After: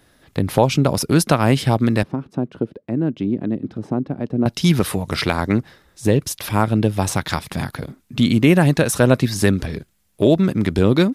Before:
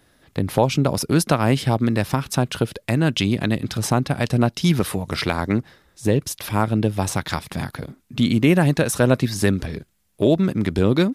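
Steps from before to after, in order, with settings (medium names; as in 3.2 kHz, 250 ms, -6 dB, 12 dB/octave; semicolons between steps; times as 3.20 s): 2.03–4.46 s: band-pass filter 290 Hz, Q 1.4; trim +2.5 dB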